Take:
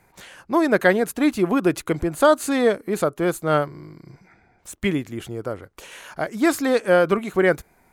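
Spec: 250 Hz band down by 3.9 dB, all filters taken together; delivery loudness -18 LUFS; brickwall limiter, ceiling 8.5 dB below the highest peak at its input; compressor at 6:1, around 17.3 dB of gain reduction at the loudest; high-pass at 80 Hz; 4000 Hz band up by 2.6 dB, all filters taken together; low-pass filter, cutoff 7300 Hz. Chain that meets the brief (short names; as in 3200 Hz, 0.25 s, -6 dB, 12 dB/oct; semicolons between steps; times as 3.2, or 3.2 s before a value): HPF 80 Hz; LPF 7300 Hz; bell 250 Hz -5.5 dB; bell 4000 Hz +3.5 dB; compressor 6:1, threshold -31 dBFS; gain +20 dB; limiter -6.5 dBFS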